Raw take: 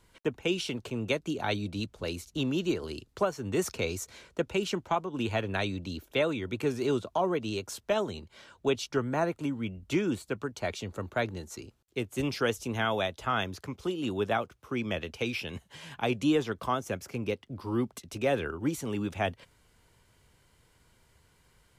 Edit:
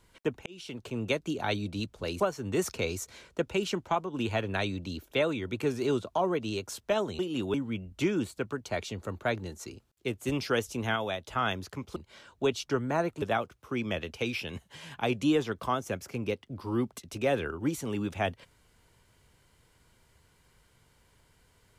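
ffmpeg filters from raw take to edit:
-filter_complex "[0:a]asplit=9[a][b][c][d][e][f][g][h][i];[a]atrim=end=0.46,asetpts=PTS-STARTPTS,afade=t=out:st=0.456:d=0.004:c=hsin[j];[b]atrim=start=0.46:end=2.202,asetpts=PTS-STARTPTS,afade=t=in:d=0.52[k];[c]atrim=start=3.198:end=8.192[l];[d]atrim=start=13.868:end=14.222[m];[e]atrim=start=9.448:end=12.872[n];[f]atrim=start=12.868:end=13.162,asetpts=PTS-STARTPTS,volume=-3.5dB[o];[g]atrim=start=13.158:end=13.872[p];[h]atrim=start=8.188:end=9.452[q];[i]atrim=start=14.218[r];[j][k]concat=n=2:v=0:a=1[s];[s][l]acrossfade=d=0.004:c1=hsin:c2=hsin[t];[t][m]acrossfade=d=0.004:c1=hsin:c2=hsin[u];[u][n]acrossfade=d=0.004:c1=hsin:c2=hsin[v];[v][o]acrossfade=d=0.004:c1=hsin:c2=hsin[w];[w][p]acrossfade=d=0.004:c1=hsin:c2=hsin[x];[x][q]acrossfade=d=0.004:c1=hsin:c2=hsin[y];[y][r]acrossfade=d=0.004:c1=hsin:c2=hsin"

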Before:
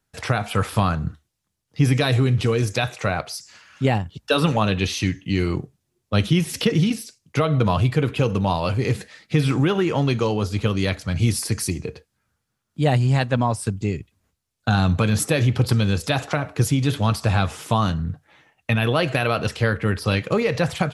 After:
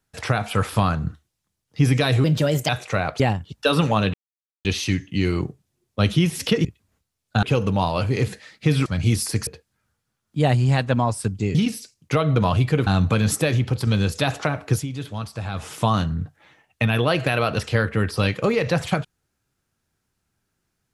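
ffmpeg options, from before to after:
-filter_complex "[0:a]asplit=14[a][b][c][d][e][f][g][h][i][j][k][l][m][n];[a]atrim=end=2.244[o];[b]atrim=start=2.24:end=2.8,asetpts=PTS-STARTPTS,asetrate=55125,aresample=44100[p];[c]atrim=start=2.796:end=3.312[q];[d]atrim=start=3.848:end=4.79,asetpts=PTS-STARTPTS,afade=t=out:st=0.938:d=0.004:c=hsin,apad=pad_dur=0.51[r];[e]atrim=start=4.79:end=6.792,asetpts=PTS-STARTPTS,afade=t=in:d=0.004:c=hsin[s];[f]atrim=start=13.968:end=14.752[t];[g]atrim=start=8.108:end=9.542[u];[h]atrim=start=11.018:end=11.632[v];[i]atrim=start=11.888:end=13.972[w];[j]atrim=start=6.788:end=8.112[x];[k]atrim=start=14.748:end=15.75,asetpts=PTS-STARTPTS,afade=t=out:st=0.522:d=0.48:silence=0.501187[y];[l]atrim=start=15.75:end=16.74,asetpts=PTS-STARTPTS,afade=t=in:d=0.004:c=hsin:silence=0.501187,afade=t=out:st=0.84:d=0.15:silence=0.316228[z];[m]atrim=start=16.74:end=17.41,asetpts=PTS-STARTPTS,volume=-10dB[aa];[n]atrim=start=17.41,asetpts=PTS-STARTPTS,afade=t=in:d=0.15:silence=0.316228[ab];[o][p]acrossfade=d=0.004:c1=hsin:c2=hsin[ac];[ac][q]acrossfade=d=0.004:c1=hsin:c2=hsin[ad];[r][s]concat=n=2:v=0:a=1[ae];[ad][ae]acrossfade=d=0.004:c1=hsin:c2=hsin[af];[af][t]acrossfade=d=0.004:c1=hsin:c2=hsin[ag];[ag][u]acrossfade=d=0.004:c1=hsin:c2=hsin[ah];[ah][v]acrossfade=d=0.004:c1=hsin:c2=hsin[ai];[ai][w]acrossfade=d=0.004:c1=hsin:c2=hsin[aj];[aj][x]acrossfade=d=0.004:c1=hsin:c2=hsin[ak];[y][z][aa][ab]concat=n=4:v=0:a=1[al];[ak][al]acrossfade=d=0.004:c1=hsin:c2=hsin"

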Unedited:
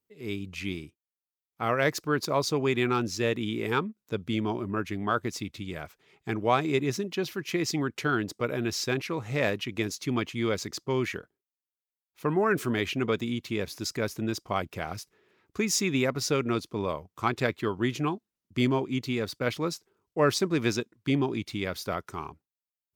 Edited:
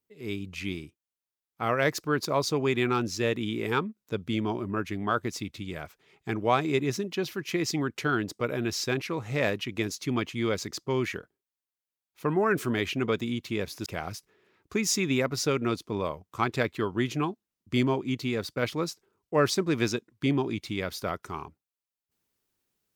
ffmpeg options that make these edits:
-filter_complex "[0:a]asplit=2[a][b];[a]atrim=end=13.862[c];[b]atrim=start=14.698[d];[c][d]acrossfade=d=0.004:c1=hsin:c2=hsin"

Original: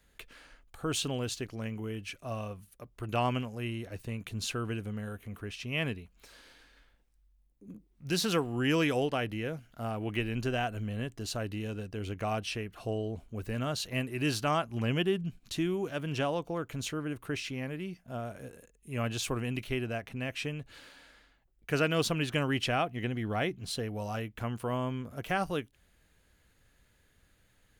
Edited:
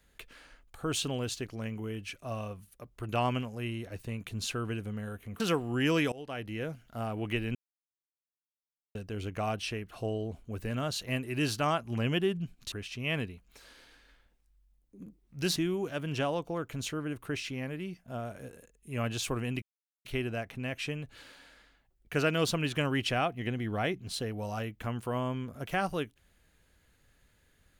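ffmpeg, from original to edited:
-filter_complex "[0:a]asplit=8[a][b][c][d][e][f][g][h];[a]atrim=end=5.402[i];[b]atrim=start=8.238:end=8.96,asetpts=PTS-STARTPTS,afade=t=out:st=0.718:d=0.004:c=hsin:silence=0.0707946[j];[c]atrim=start=8.96:end=10.39,asetpts=PTS-STARTPTS,afade=t=in:d=0.54:silence=0.0707946,afade=t=out:st=1.426:d=0.004:c=hsin[k];[d]atrim=start=10.39:end=11.79,asetpts=PTS-STARTPTS,volume=0[l];[e]atrim=start=11.79:end=15.562,asetpts=PTS-STARTPTS,afade=t=in:d=0.004:c=hsin[m];[f]atrim=start=5.398:end=8.242[n];[g]atrim=start=15.558:end=19.62,asetpts=PTS-STARTPTS,afade=t=out:st=4.058:d=0.004:c=hsin,apad=pad_dur=0.43[o];[h]atrim=start=19.62,asetpts=PTS-STARTPTS,afade=t=in:d=0.004:c=hsin[p];[j][k][l][m]concat=n=4:v=0:a=1[q];[i][q]acrossfade=d=0.004:c1=hsin:c2=hsin[r];[r][n]acrossfade=d=0.004:c1=hsin:c2=hsin[s];[o][p]concat=n=2:v=0:a=1[t];[s][t]acrossfade=d=0.004:c1=hsin:c2=hsin"

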